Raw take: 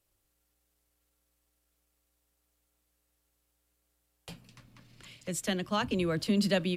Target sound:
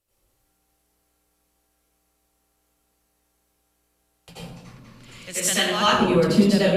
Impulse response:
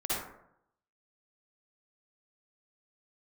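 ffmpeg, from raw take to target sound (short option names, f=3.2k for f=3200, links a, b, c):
-filter_complex "[0:a]asettb=1/sr,asplit=3[a][b][c];[a]atrim=end=5.224[d];[b]atrim=start=5.22:end=5.85,asetpts=PTS-STARTPTS,afade=t=in:d=0.004:c=qsin,afade=t=out:st=0.626:d=0.004:c=qsin,tiltshelf=f=670:g=-9[e];[c]atrim=start=5.846[f];[d][e]acrossfade=d=0.004:c1=hsin:c2=qsin[g];[g][f]acrossfade=d=0.004:c1=qsin:c2=hsin[h];[1:a]atrim=start_sample=2205,asetrate=29106,aresample=44100[i];[h][i]afir=irnorm=-1:irlink=0"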